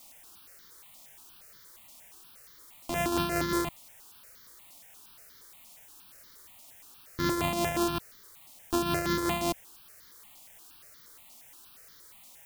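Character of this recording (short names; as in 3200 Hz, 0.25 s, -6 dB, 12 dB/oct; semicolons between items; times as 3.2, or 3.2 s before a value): a buzz of ramps at a fixed pitch in blocks of 128 samples; tremolo triangle 5.4 Hz, depth 55%; a quantiser's noise floor 10-bit, dither triangular; notches that jump at a steady rate 8.5 Hz 430–2600 Hz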